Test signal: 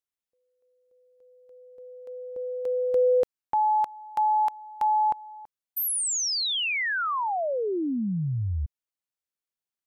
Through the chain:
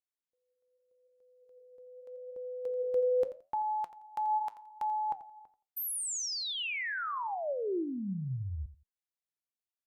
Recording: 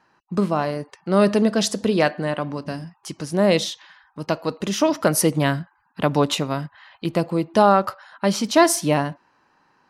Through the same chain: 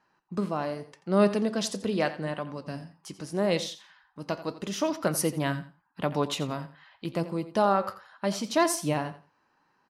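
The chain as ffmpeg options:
ffmpeg -i in.wav -af "flanger=delay=4.8:depth=5.7:regen=80:speed=0.81:shape=sinusoidal,aecho=1:1:86|172:0.188|0.0396,volume=-4dB" out.wav

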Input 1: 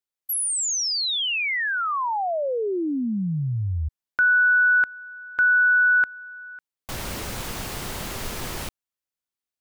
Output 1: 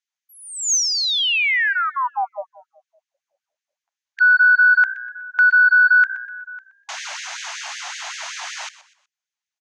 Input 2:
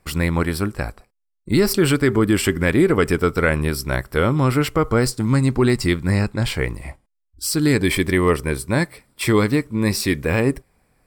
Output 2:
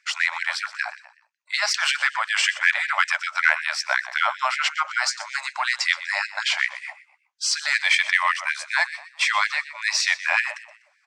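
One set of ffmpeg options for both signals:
ffmpeg -i in.wav -filter_complex "[0:a]highpass=140,equalizer=frequency=150:width_type=q:width=4:gain=9,equalizer=frequency=220:width_type=q:width=4:gain=-10,equalizer=frequency=320:width_type=q:width=4:gain=-8,equalizer=frequency=550:width_type=q:width=4:gain=-10,equalizer=frequency=1200:width_type=q:width=4:gain=-4,equalizer=frequency=6400:width_type=q:width=4:gain=10,lowpass=frequency=6800:width=0.5412,lowpass=frequency=6800:width=1.3066,asplit=2[link_01][link_02];[link_02]asplit=3[link_03][link_04][link_05];[link_03]adelay=123,afreqshift=60,volume=-16dB[link_06];[link_04]adelay=246,afreqshift=120,volume=-25.1dB[link_07];[link_05]adelay=369,afreqshift=180,volume=-34.2dB[link_08];[link_06][link_07][link_08]amix=inputs=3:normalize=0[link_09];[link_01][link_09]amix=inputs=2:normalize=0,acontrast=88,bass=frequency=250:gain=4,treble=frequency=4000:gain=-7,bandreject=frequency=60:width_type=h:width=6,bandreject=frequency=120:width_type=h:width=6,bandreject=frequency=180:width_type=h:width=6,afftfilt=real='re*gte(b*sr/1024,550*pow(1600/550,0.5+0.5*sin(2*PI*5.3*pts/sr)))':imag='im*gte(b*sr/1024,550*pow(1600/550,0.5+0.5*sin(2*PI*5.3*pts/sr)))':win_size=1024:overlap=0.75" out.wav

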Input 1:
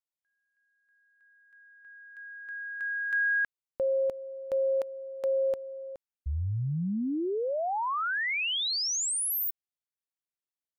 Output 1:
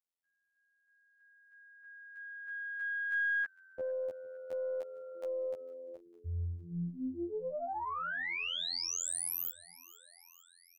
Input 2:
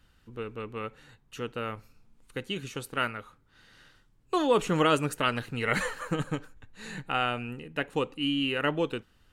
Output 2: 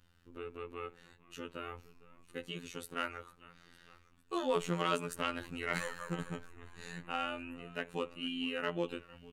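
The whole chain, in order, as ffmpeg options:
ffmpeg -i in.wav -filter_complex "[0:a]asplit=2[link_01][link_02];[link_02]acompressor=threshold=-37dB:ratio=6:attack=7.1:release=56,volume=-3dB[link_03];[link_01][link_03]amix=inputs=2:normalize=0,asplit=6[link_04][link_05][link_06][link_07][link_08][link_09];[link_05]adelay=454,afreqshift=-64,volume=-21dB[link_10];[link_06]adelay=908,afreqshift=-128,volume=-24.9dB[link_11];[link_07]adelay=1362,afreqshift=-192,volume=-28.8dB[link_12];[link_08]adelay=1816,afreqshift=-256,volume=-32.6dB[link_13];[link_09]adelay=2270,afreqshift=-320,volume=-36.5dB[link_14];[link_04][link_10][link_11][link_12][link_13][link_14]amix=inputs=6:normalize=0,afftfilt=real='hypot(re,im)*cos(PI*b)':imag='0':win_size=2048:overlap=0.75,aeval=exprs='0.422*(cos(1*acos(clip(val(0)/0.422,-1,1)))-cos(1*PI/2))+0.0596*(cos(2*acos(clip(val(0)/0.422,-1,1)))-cos(2*PI/2))+0.00596*(cos(5*acos(clip(val(0)/0.422,-1,1)))-cos(5*PI/2))+0.00944*(cos(8*acos(clip(val(0)/0.422,-1,1)))-cos(8*PI/2))':channel_layout=same,volume=-7dB" out.wav

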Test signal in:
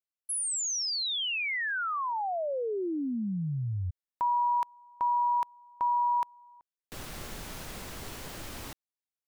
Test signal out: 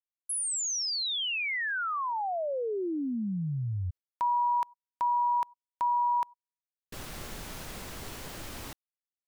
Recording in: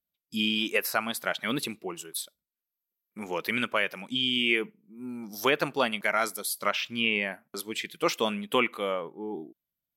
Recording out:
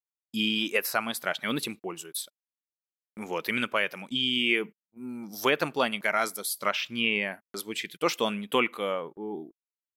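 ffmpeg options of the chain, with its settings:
ffmpeg -i in.wav -af "agate=range=-50dB:threshold=-46dB:ratio=16:release=87:detection=rms" out.wav

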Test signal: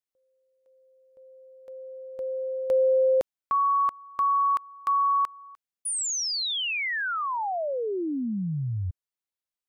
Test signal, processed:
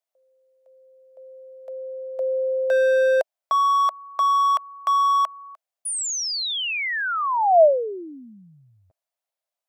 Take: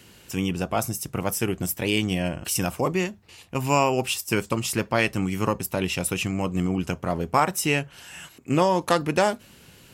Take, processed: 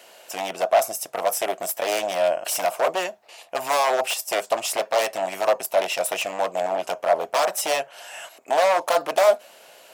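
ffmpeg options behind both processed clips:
ffmpeg -i in.wav -af "aeval=exprs='0.0891*(abs(mod(val(0)/0.0891+3,4)-2)-1)':channel_layout=same,highpass=frequency=640:width_type=q:width=6.1,volume=2dB" out.wav

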